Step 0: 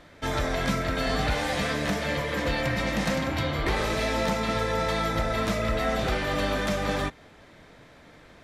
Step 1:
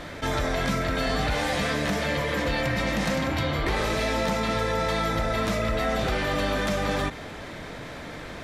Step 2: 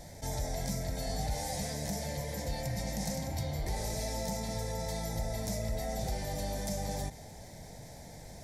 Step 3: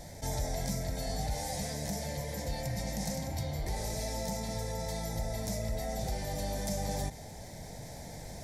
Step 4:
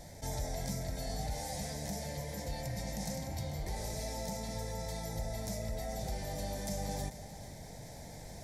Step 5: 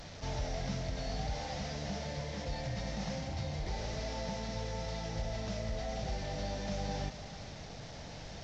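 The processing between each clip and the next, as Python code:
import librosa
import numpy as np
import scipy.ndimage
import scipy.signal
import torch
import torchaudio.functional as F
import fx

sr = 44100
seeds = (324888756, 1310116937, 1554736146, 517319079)

y1 = fx.env_flatten(x, sr, amount_pct=50)
y1 = y1 * librosa.db_to_amplitude(-1.0)
y2 = fx.curve_eq(y1, sr, hz=(120.0, 200.0, 300.0, 840.0, 1200.0, 2000.0, 2800.0, 5400.0, 12000.0), db=(0, -3, -12, -2, -26, -10, -19, 4, 8))
y2 = y2 * librosa.db_to_amplitude(-5.5)
y3 = fx.rider(y2, sr, range_db=4, speed_s=2.0)
y4 = y3 + 10.0 ** (-14.5 / 20.0) * np.pad(y3, (int(441 * sr / 1000.0), 0))[:len(y3)]
y4 = y4 * librosa.db_to_amplitude(-3.5)
y5 = fx.delta_mod(y4, sr, bps=32000, step_db=-43.5)
y5 = y5 * librosa.db_to_amplitude(1.0)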